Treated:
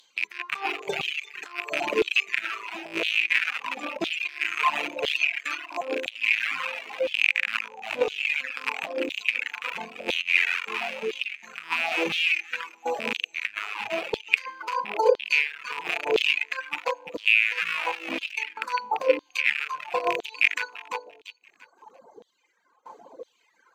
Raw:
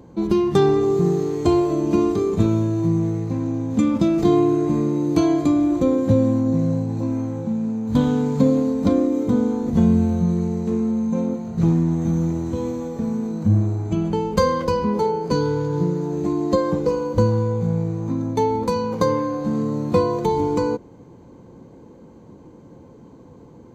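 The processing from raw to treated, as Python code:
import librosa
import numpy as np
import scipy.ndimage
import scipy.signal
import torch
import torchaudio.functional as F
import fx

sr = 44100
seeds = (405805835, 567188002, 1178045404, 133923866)

p1 = fx.rattle_buzz(x, sr, strikes_db=-24.0, level_db=-12.0)
p2 = fx.tremolo_shape(p1, sr, shape='saw_down', hz=0.7, depth_pct=80)
p3 = p2 + fx.echo_feedback(p2, sr, ms=342, feedback_pct=34, wet_db=-8, dry=0)
p4 = fx.dereverb_blind(p3, sr, rt60_s=0.95)
p5 = fx.fold_sine(p4, sr, drive_db=7, ceiling_db=-4.0)
p6 = fx.dereverb_blind(p5, sr, rt60_s=1.3)
p7 = fx.over_compress(p6, sr, threshold_db=-16.0, ratio=-0.5)
p8 = fx.filter_lfo_highpass(p7, sr, shape='saw_down', hz=0.99, low_hz=460.0, high_hz=3600.0, q=4.7)
y = p8 * librosa.db_to_amplitude(-8.5)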